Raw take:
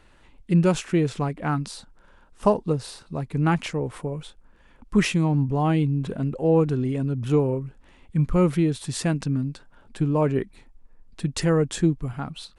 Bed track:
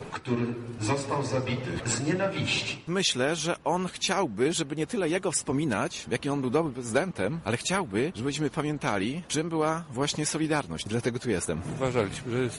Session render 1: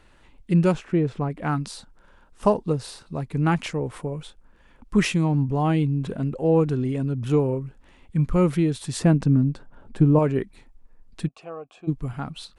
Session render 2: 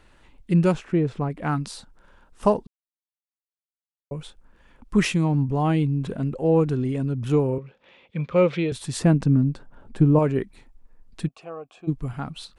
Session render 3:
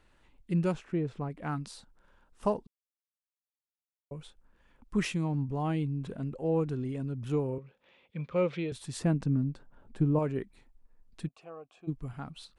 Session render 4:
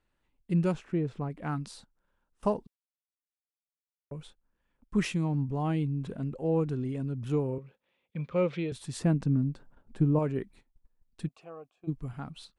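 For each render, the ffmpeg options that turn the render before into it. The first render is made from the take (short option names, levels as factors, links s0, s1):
-filter_complex "[0:a]asplit=3[s0][s1][s2];[s0]afade=t=out:st=0.72:d=0.02[s3];[s1]lowpass=f=1200:p=1,afade=t=in:st=0.72:d=0.02,afade=t=out:st=1.3:d=0.02[s4];[s2]afade=t=in:st=1.3:d=0.02[s5];[s3][s4][s5]amix=inputs=3:normalize=0,asettb=1/sr,asplit=3[s6][s7][s8];[s6]atrim=end=8.994[s9];[s7]atrim=start=8.99:end=10.19,asetpts=PTS-STARTPTS,afade=t=in:d=0.004:c=qsin,afade=t=out:st=1.196:d=0.004:c=qsin,tiltshelf=f=1500:g=6.5[s10];[s8]atrim=start=10.186[s11];[s9][s10]acrossfade=d=0.004:c1=hsin:c2=qsin[s12];[s12][s11]acrossfade=d=0.004:c1=qsin:c2=hsin,asplit=3[s13][s14][s15];[s13]afade=t=out:st=11.27:d=0.02[s16];[s14]asplit=3[s17][s18][s19];[s17]bandpass=f=730:t=q:w=8,volume=1[s20];[s18]bandpass=f=1090:t=q:w=8,volume=0.501[s21];[s19]bandpass=f=2440:t=q:w=8,volume=0.355[s22];[s20][s21][s22]amix=inputs=3:normalize=0,afade=t=in:st=11.27:d=0.02,afade=t=out:st=11.87:d=0.02[s23];[s15]afade=t=in:st=11.87:d=0.02[s24];[s16][s23][s24]amix=inputs=3:normalize=0"
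-filter_complex "[0:a]asettb=1/sr,asplit=3[s0][s1][s2];[s0]atrim=end=7.584[s3];[s1]atrim=start=7.58:end=8.72,asetpts=PTS-STARTPTS,afade=t=in:d=0.004:c=qsin,afade=t=out:st=1.136:d=0.004:c=qsin,highpass=200,equalizer=f=280:t=q:w=4:g=-9,equalizer=f=520:t=q:w=4:g=9,equalizer=f=2400:t=q:w=4:g=8,equalizer=f=3500:t=q:w=4:g=7,lowpass=f=5300:w=0.5412,lowpass=f=5300:w=1.3066[s4];[s2]atrim=start=8.716[s5];[s3][s4]acrossfade=d=0.004:c1=hsin:c2=qsin[s6];[s6][s5]acrossfade=d=0.004:c1=qsin:c2=hsin,asplit=3[s7][s8][s9];[s7]atrim=end=2.67,asetpts=PTS-STARTPTS,afade=t=out:st=2.666:d=0.004:c=hsin[s10];[s8]atrim=start=2.67:end=4.11,asetpts=PTS-STARTPTS,volume=0[s11];[s9]atrim=start=4.11,asetpts=PTS-STARTPTS,afade=t=in:d=0.004:c=hsin[s12];[s10][s11][s12]concat=n=3:v=0:a=1"
-af "volume=0.335"
-af "equalizer=f=180:t=o:w=2:g=2,agate=range=0.224:threshold=0.00224:ratio=16:detection=peak"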